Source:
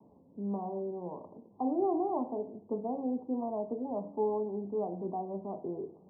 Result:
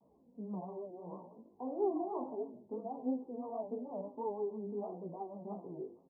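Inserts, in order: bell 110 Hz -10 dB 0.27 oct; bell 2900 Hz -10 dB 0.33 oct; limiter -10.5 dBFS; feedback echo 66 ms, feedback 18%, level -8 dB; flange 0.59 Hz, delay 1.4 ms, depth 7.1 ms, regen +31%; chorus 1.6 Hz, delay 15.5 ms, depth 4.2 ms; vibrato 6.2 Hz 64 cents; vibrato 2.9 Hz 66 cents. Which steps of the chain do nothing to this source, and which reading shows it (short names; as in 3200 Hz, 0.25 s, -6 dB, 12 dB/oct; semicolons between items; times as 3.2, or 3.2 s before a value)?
bell 2900 Hz: input band ends at 1100 Hz; limiter -10.5 dBFS: input peak -20.0 dBFS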